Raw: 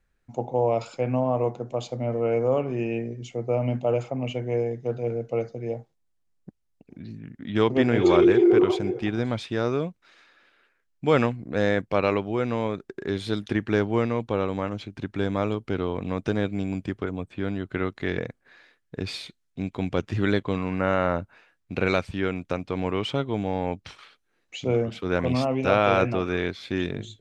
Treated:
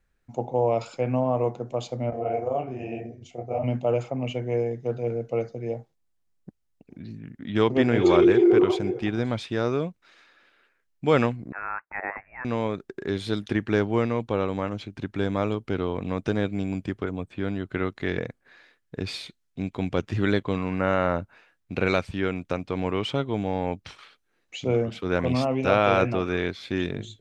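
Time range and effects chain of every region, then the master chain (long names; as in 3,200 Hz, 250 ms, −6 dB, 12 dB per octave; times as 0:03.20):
0:02.10–0:03.64: parametric band 700 Hz +15 dB 0.2 octaves + amplitude modulation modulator 24 Hz, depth 45% + micro pitch shift up and down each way 46 cents
0:11.52–0:12.45: high-pass filter 1,200 Hz 24 dB per octave + voice inversion scrambler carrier 3,100 Hz
whole clip: no processing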